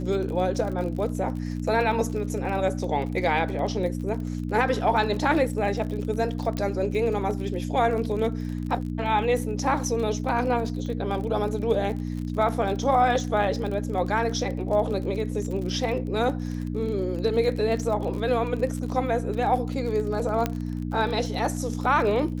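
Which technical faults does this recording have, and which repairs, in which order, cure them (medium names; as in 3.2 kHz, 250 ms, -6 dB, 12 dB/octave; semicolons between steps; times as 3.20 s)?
crackle 38 per s -32 dBFS
hum 60 Hz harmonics 5 -30 dBFS
6.57 s: pop -16 dBFS
20.46 s: pop -11 dBFS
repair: de-click; de-hum 60 Hz, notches 5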